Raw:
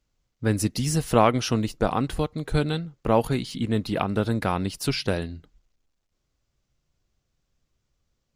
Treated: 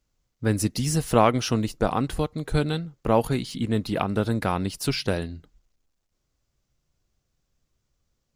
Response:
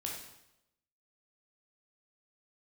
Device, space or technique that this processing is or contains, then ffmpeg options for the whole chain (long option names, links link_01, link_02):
exciter from parts: -filter_complex "[0:a]asplit=2[link_01][link_02];[link_02]highpass=2800,asoftclip=type=tanh:threshold=-39.5dB,highpass=frequency=4100:poles=1,volume=-7.5dB[link_03];[link_01][link_03]amix=inputs=2:normalize=0"